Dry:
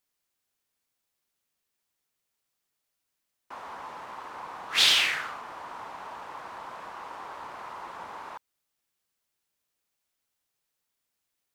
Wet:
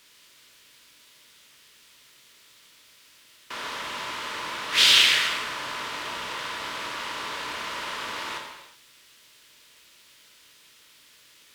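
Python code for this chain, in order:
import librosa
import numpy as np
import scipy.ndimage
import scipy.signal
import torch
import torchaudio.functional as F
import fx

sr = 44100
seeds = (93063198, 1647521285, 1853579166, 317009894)

y = fx.bin_compress(x, sr, power=0.6)
y = fx.peak_eq(y, sr, hz=760.0, db=-13.0, octaves=0.27)
y = fx.rev_gated(y, sr, seeds[0], gate_ms=400, shape='falling', drr_db=0.0)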